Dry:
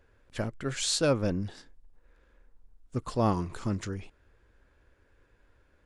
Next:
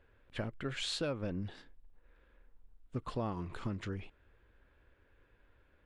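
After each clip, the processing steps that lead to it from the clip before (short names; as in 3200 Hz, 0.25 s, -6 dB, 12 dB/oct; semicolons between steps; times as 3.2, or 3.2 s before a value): resonant high shelf 4400 Hz -9 dB, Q 1.5; compressor 6:1, threshold -30 dBFS, peak gain reduction 10 dB; gain -3 dB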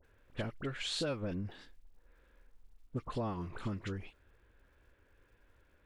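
crackle 190/s -66 dBFS; dispersion highs, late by 43 ms, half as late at 1700 Hz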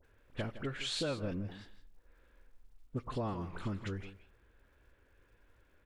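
echo 0.163 s -13.5 dB; on a send at -22 dB: reverb RT60 0.75 s, pre-delay 3 ms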